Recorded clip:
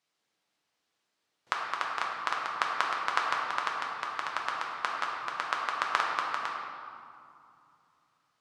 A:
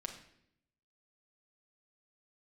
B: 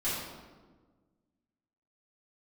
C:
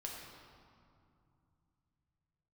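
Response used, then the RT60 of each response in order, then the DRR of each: C; 0.70, 1.4, 2.5 seconds; 1.5, −12.5, −2.0 decibels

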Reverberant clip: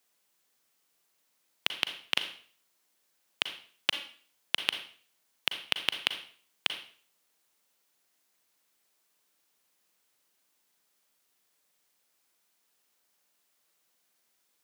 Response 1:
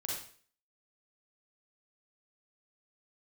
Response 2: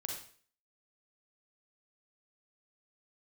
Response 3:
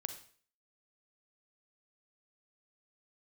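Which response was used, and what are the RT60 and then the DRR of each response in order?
3; 0.45, 0.45, 0.45 seconds; −3.5, 0.5, 8.0 decibels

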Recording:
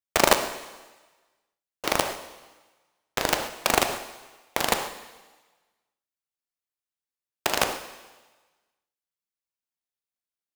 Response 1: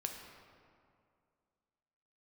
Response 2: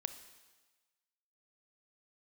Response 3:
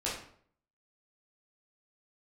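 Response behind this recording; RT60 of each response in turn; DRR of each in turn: 2; 2.3, 1.3, 0.60 seconds; 2.5, 10.0, −7.5 decibels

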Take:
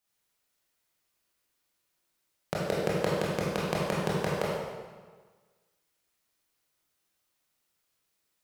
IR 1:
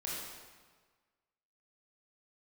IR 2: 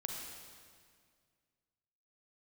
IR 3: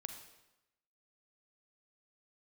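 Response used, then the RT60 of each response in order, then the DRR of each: 1; 1.5, 2.0, 0.95 seconds; −6.0, 0.5, 5.5 decibels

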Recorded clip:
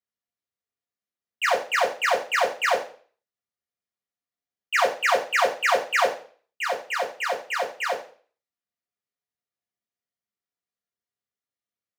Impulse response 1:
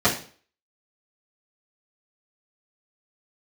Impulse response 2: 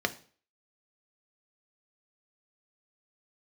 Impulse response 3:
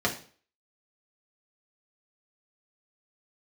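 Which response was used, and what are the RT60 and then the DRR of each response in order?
3; 0.45, 0.45, 0.45 seconds; −11.5, 7.0, −2.0 decibels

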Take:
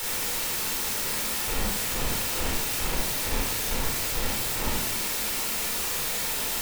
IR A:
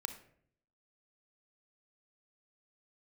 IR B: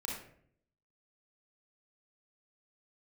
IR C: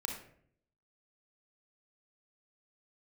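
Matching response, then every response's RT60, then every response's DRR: B; 0.65, 0.60, 0.60 seconds; 8.0, −3.0, 1.5 decibels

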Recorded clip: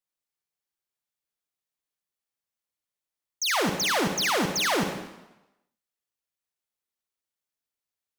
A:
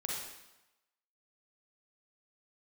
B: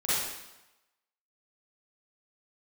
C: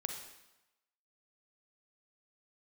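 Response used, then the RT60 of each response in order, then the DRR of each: C; 0.95, 0.95, 0.95 seconds; −3.5, −12.5, 3.5 decibels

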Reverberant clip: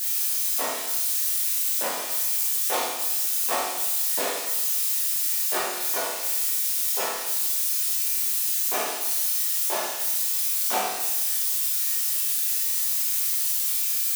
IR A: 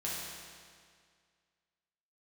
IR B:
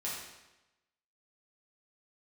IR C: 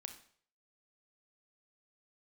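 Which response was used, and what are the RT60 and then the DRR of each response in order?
B; 2.0, 1.0, 0.55 seconds; −7.0, −7.5, 6.5 decibels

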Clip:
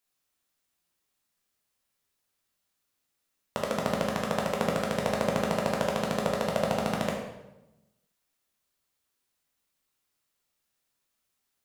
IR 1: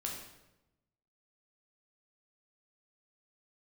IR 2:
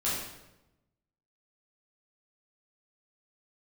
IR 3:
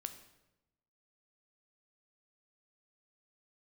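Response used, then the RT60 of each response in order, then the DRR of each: 1; 0.95, 0.95, 0.95 seconds; −1.5, −9.0, 8.0 decibels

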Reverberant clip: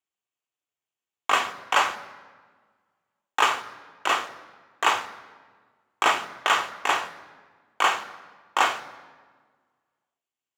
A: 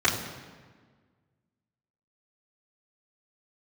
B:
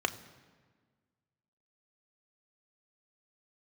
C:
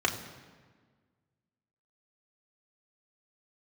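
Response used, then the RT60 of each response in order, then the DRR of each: B; 1.5, 1.5, 1.5 seconds; −10.0, 7.0, 0.0 decibels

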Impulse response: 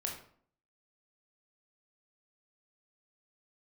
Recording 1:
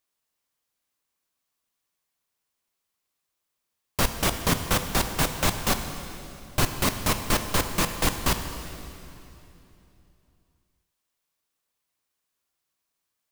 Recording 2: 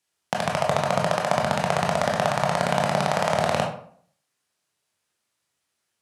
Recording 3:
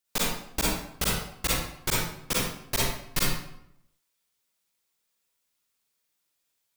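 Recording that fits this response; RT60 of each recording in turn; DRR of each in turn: 2; 3.0, 0.55, 0.75 seconds; 6.5, −0.5, −6.0 decibels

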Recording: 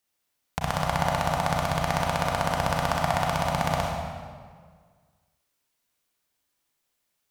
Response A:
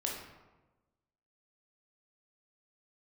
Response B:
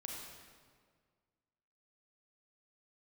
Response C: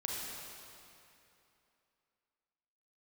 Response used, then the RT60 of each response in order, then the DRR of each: B; 1.2, 1.8, 2.8 seconds; −2.0, −1.5, −3.5 decibels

